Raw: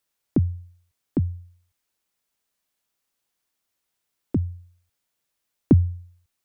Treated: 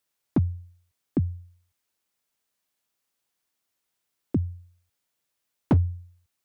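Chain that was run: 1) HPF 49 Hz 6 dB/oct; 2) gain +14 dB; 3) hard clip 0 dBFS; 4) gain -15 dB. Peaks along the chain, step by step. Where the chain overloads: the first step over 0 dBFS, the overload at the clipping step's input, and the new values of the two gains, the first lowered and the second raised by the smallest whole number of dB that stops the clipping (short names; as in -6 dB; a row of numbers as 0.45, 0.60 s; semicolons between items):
-5.5, +8.5, 0.0, -15.0 dBFS; step 2, 8.5 dB; step 2 +5 dB, step 4 -6 dB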